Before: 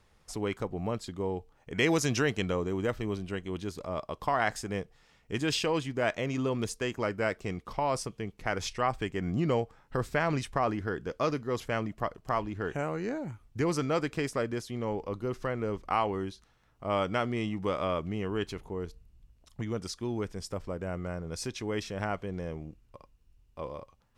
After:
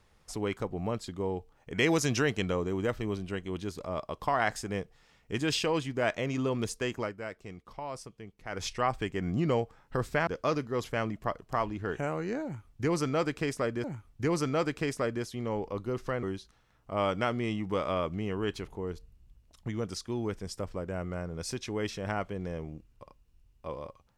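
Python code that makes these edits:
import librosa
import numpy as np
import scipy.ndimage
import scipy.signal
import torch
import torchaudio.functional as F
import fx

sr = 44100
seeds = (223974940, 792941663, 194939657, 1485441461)

y = fx.edit(x, sr, fx.fade_down_up(start_s=6.97, length_s=1.68, db=-9.5, fade_s=0.17),
    fx.cut(start_s=10.27, length_s=0.76),
    fx.repeat(start_s=13.2, length_s=1.4, count=2),
    fx.cut(start_s=15.59, length_s=0.57), tone=tone)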